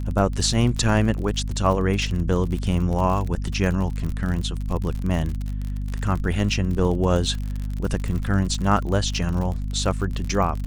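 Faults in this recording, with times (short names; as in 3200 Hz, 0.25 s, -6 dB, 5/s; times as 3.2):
crackle 47/s -27 dBFS
hum 50 Hz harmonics 5 -27 dBFS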